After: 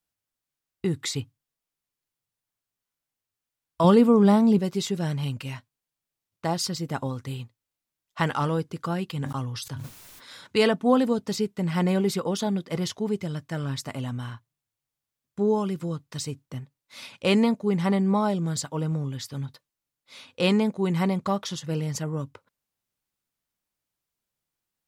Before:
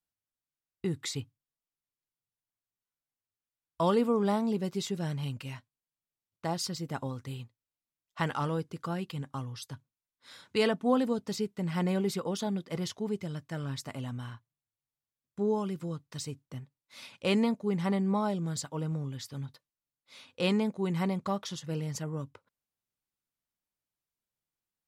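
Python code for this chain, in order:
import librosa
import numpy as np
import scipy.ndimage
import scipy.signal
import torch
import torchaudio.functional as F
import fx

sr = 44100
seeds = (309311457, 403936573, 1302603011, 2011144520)

y = fx.peak_eq(x, sr, hz=150.0, db=7.5, octaves=1.8, at=(3.84, 4.59))
y = fx.sustainer(y, sr, db_per_s=32.0, at=(9.17, 10.47))
y = F.gain(torch.from_numpy(y), 6.0).numpy()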